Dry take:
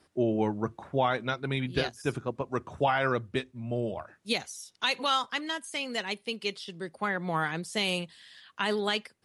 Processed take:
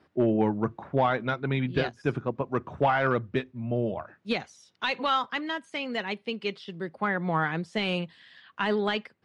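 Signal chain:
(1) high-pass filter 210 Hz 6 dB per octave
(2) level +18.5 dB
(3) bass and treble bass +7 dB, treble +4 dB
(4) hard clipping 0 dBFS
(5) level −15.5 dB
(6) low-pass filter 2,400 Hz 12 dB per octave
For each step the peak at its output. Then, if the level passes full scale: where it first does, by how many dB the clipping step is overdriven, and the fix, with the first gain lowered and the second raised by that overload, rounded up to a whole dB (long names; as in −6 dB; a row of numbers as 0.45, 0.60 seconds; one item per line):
−14.0, +4.5, +5.5, 0.0, −15.5, −15.0 dBFS
step 2, 5.5 dB
step 2 +12.5 dB, step 5 −9.5 dB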